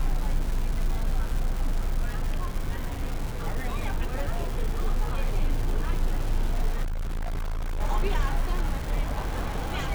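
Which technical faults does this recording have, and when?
crackle 520 per s -32 dBFS
6.83–7.81 s: clipped -26 dBFS

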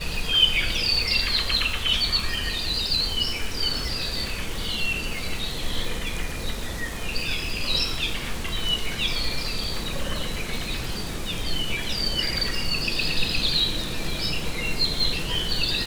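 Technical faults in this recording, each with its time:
crackle 530 per s -31 dBFS

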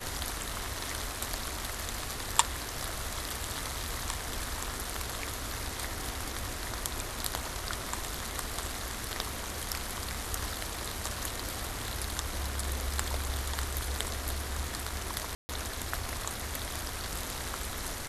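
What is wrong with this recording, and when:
15.35–15.49 s: dropout 140 ms

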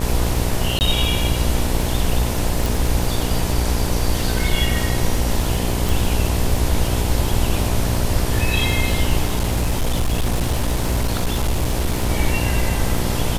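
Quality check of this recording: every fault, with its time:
buzz 60 Hz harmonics 17 -23 dBFS
crackle 33 per s -21 dBFS
0.79–0.81 s: dropout 19 ms
2.66 s: pop
5.89 s: pop
9.25–12.10 s: clipped -14.5 dBFS

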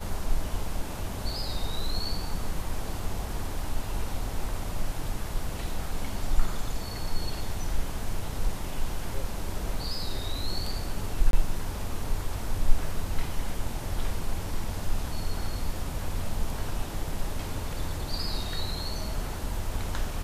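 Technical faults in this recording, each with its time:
11.31–11.33 s: dropout 22 ms

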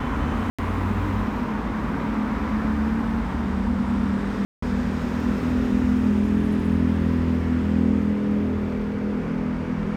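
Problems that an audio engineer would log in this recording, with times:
0.50–0.59 s: dropout 86 ms
4.45–4.62 s: dropout 174 ms

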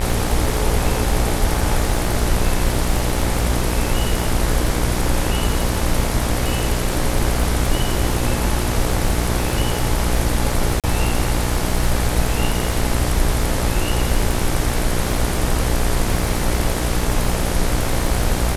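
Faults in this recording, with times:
buzz 60 Hz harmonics 39 -23 dBFS
crackle 61 per s -23 dBFS
10.80–10.84 s: dropout 37 ms

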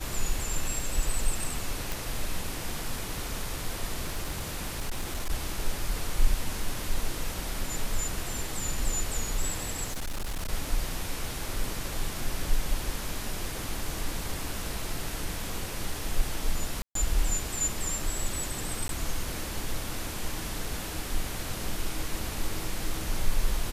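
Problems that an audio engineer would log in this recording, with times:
1.92 s: pop
4.06–5.31 s: clipped -26.5 dBFS
9.84–10.51 s: clipped -28.5 dBFS
16.82–16.95 s: dropout 133 ms
18.88–18.89 s: dropout 12 ms

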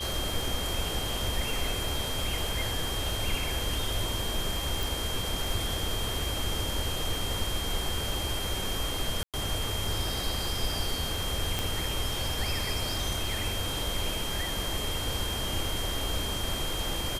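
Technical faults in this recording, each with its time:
crackle 11 per s -33 dBFS
whine 3.2 kHz -35 dBFS
4.83 s: pop
9.23–9.34 s: dropout 107 ms
11.59 s: pop

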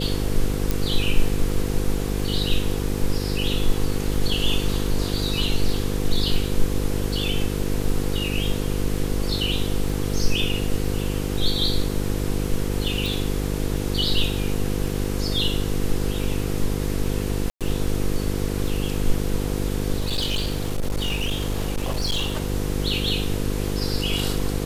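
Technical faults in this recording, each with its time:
buzz 50 Hz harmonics 10 -26 dBFS
crackle 17 per s -30 dBFS
0.71 s: pop
13.06 s: pop
17.50–17.61 s: dropout 107 ms
19.98–22.50 s: clipped -19.5 dBFS

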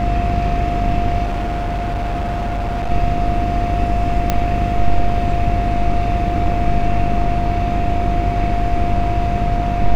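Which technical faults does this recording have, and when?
buzz 50 Hz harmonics 28 -21 dBFS
whine 700 Hz -21 dBFS
1.23–2.91 s: clipped -17.5 dBFS
4.30 s: pop -2 dBFS

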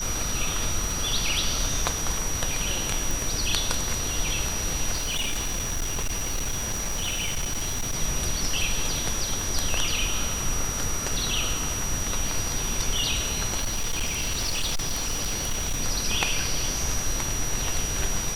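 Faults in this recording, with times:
crackle 14 per s -30 dBFS
whine 5.8 kHz -30 dBFS
3.11 s: pop
4.93–7.96 s: clipped -23.5 dBFS
13.57–15.81 s: clipped -22.5 dBFS

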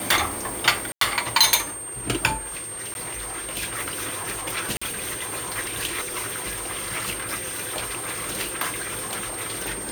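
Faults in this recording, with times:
whine 8.7 kHz -32 dBFS
0.92–1.01 s: dropout 93 ms
2.94–2.95 s: dropout 11 ms
4.77–4.82 s: dropout 45 ms

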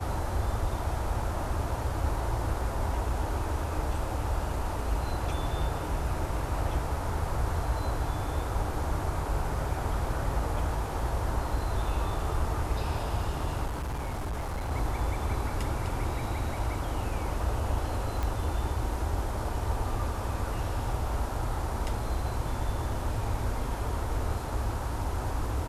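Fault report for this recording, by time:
13.66–14.72 s: clipped -29.5 dBFS
18.23 s: pop

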